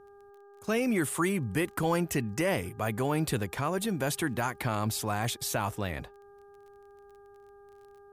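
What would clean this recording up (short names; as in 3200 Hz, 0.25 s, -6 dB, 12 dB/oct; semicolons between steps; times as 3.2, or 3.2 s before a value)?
de-click; de-hum 402.9 Hz, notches 4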